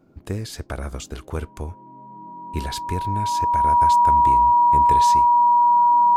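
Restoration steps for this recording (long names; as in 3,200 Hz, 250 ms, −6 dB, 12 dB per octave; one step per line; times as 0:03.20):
notch filter 960 Hz, Q 30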